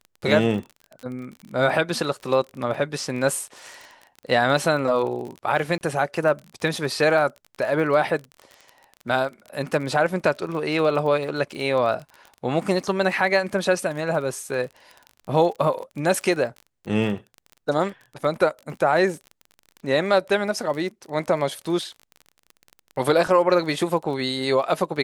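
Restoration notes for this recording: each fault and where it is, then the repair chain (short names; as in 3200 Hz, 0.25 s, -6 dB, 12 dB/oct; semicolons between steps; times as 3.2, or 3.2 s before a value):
crackle 31/s -31 dBFS
5.78–5.81 gap 29 ms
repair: de-click; interpolate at 5.78, 29 ms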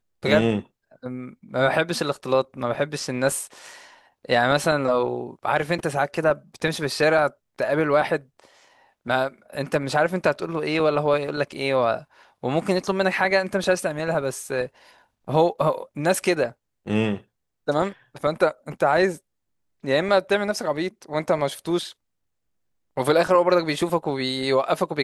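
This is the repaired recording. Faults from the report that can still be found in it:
none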